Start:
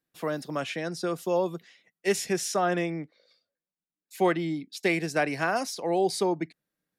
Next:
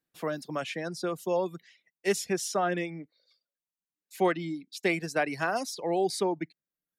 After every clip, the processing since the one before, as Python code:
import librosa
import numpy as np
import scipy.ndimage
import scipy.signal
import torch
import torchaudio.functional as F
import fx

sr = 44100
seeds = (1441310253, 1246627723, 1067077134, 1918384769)

y = fx.dereverb_blind(x, sr, rt60_s=0.74)
y = y * librosa.db_to_amplitude(-1.5)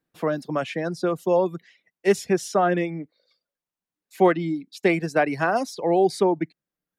y = fx.high_shelf(x, sr, hz=2300.0, db=-10.5)
y = y * librosa.db_to_amplitude(8.5)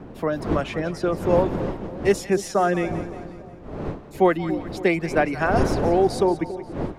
y = fx.dmg_wind(x, sr, seeds[0], corner_hz=390.0, level_db=-30.0)
y = fx.echo_split(y, sr, split_hz=730.0, low_ms=281, high_ms=178, feedback_pct=52, wet_db=-13.5)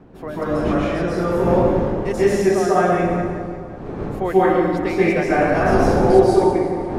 y = fx.rev_plate(x, sr, seeds[1], rt60_s=1.9, hf_ratio=0.5, predelay_ms=120, drr_db=-10.0)
y = y * librosa.db_to_amplitude(-6.5)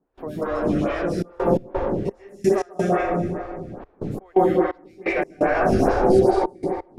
y = fx.step_gate(x, sr, bpm=86, pattern='.xxxxxx.x.xx..x', floor_db=-24.0, edge_ms=4.5)
y = fx.stagger_phaser(y, sr, hz=2.4)